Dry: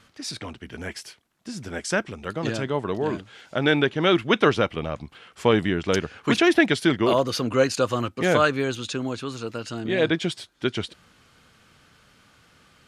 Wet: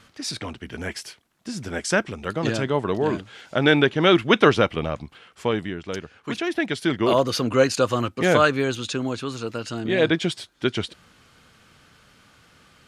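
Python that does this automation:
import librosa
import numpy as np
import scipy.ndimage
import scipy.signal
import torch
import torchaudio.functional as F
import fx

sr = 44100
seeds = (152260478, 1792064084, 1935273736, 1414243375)

y = fx.gain(x, sr, db=fx.line((4.86, 3.0), (5.82, -8.0), (6.49, -8.0), (7.18, 2.0)))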